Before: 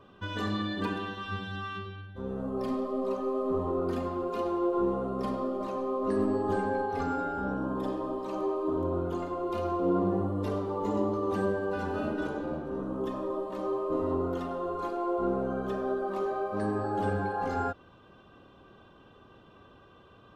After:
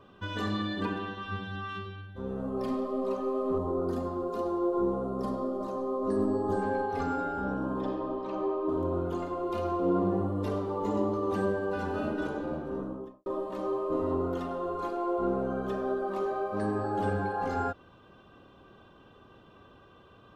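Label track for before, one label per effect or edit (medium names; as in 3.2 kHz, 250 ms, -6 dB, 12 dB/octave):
0.830000	1.690000	treble shelf 5.2 kHz -10.5 dB
3.580000	6.620000	peaking EQ 2.4 kHz -12.5 dB 0.99 oct
7.790000	8.670000	low-pass 4.9 kHz -> 3.2 kHz
12.720000	13.260000	studio fade out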